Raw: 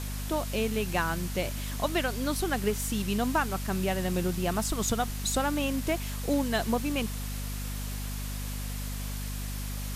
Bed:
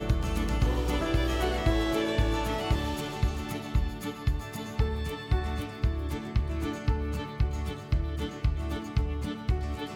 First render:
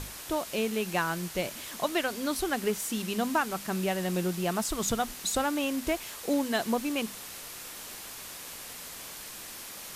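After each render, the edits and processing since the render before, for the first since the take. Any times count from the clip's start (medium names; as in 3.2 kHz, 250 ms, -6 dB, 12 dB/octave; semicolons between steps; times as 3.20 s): hum notches 50/100/150/200/250 Hz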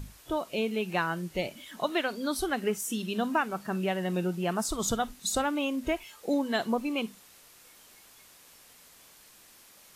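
noise print and reduce 13 dB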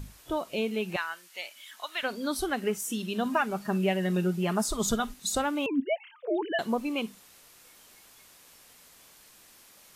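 0.96–2.03 s: high-pass 1.3 kHz; 3.25–5.14 s: comb 4.9 ms, depth 63%; 5.66–6.59 s: formants replaced by sine waves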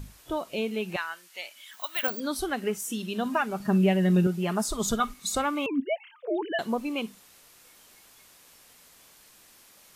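1.73–2.20 s: careless resampling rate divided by 2×, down filtered, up zero stuff; 3.60–4.27 s: bass shelf 240 Hz +11 dB; 5.00–5.80 s: small resonant body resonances 1.2/2.2 kHz, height 13 dB, ringing for 35 ms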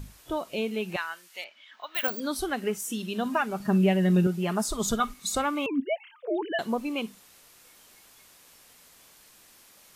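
1.44–1.95 s: distance through air 230 m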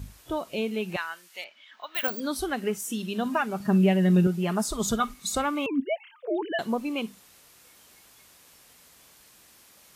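high-pass 40 Hz; bass shelf 150 Hz +4.5 dB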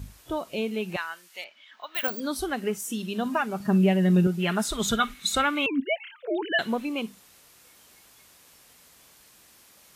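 4.39–6.85 s: time-frequency box 1.3–4.2 kHz +8 dB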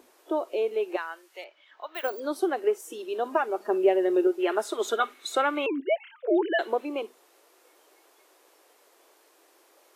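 elliptic high-pass 340 Hz, stop band 50 dB; tilt shelf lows +8.5 dB, about 1.1 kHz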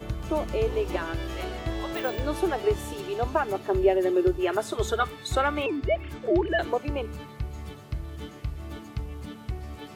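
add bed -5.5 dB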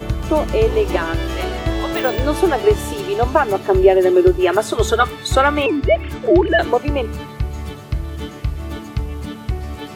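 trim +10.5 dB; peak limiter -1 dBFS, peak gain reduction 1.5 dB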